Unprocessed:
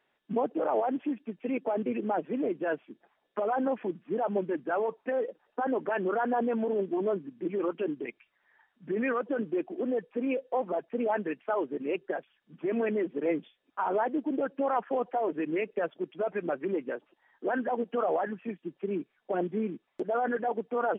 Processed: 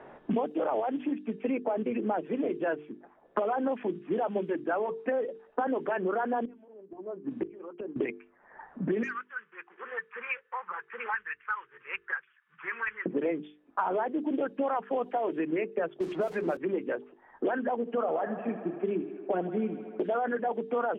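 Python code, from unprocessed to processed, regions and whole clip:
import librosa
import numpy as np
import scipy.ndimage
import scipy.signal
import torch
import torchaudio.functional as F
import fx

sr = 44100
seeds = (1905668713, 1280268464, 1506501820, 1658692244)

y = fx.chain(x, sr, fx.low_shelf(hz=330.0, db=-8.5),
    fx.gate_flip(shuts_db=-31.0, range_db=-27), at=(6.45, 7.96))
y = fx.chain(y, sr, fx.cheby2_highpass(hz=710.0, order=4, stop_db=40),
    fx.clip_hard(threshold_db=-32.5),
    fx.air_absorb(metres=60.0), at=(9.03, 13.06))
y = fx.chain(y, sr, fx.zero_step(step_db=-47.0),
    fx.hum_notches(base_hz=60, count=9),
    fx.band_squash(depth_pct=70), at=(16.0, 16.57))
y = fx.chain(y, sr, fx.high_shelf(hz=2600.0, db=-11.5),
    fx.echo_thinned(ms=78, feedback_pct=75, hz=200.0, wet_db=-13), at=(17.76, 20.04))
y = fx.hum_notches(y, sr, base_hz=50, count=9)
y = fx.env_lowpass(y, sr, base_hz=890.0, full_db=-26.5)
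y = fx.band_squash(y, sr, depth_pct=100)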